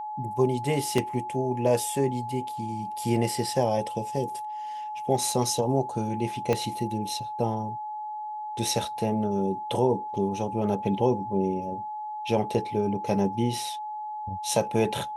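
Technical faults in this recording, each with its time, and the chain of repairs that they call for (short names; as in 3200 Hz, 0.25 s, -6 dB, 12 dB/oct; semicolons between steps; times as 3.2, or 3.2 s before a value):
tone 850 Hz -32 dBFS
0.98 gap 2.5 ms
6.53 pop -12 dBFS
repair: de-click; notch 850 Hz, Q 30; interpolate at 0.98, 2.5 ms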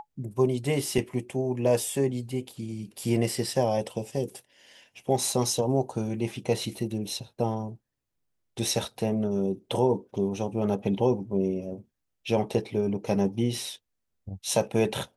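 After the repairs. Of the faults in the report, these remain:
6.53 pop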